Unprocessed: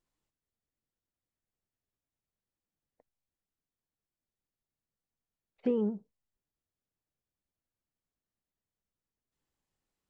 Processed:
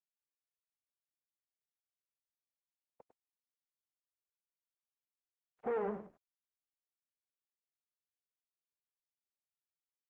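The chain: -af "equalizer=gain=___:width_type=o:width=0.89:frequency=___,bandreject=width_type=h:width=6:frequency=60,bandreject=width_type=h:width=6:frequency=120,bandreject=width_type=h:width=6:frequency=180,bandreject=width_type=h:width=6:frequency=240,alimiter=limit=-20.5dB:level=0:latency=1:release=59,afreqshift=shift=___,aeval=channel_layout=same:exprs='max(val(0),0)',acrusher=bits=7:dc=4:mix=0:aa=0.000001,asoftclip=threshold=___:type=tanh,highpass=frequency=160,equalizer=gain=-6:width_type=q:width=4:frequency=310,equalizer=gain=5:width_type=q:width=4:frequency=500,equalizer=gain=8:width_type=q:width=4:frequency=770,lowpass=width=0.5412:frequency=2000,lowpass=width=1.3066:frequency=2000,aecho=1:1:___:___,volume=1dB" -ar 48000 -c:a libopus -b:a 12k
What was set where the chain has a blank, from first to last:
14.5, 380, -15, -30dB, 101, 0.316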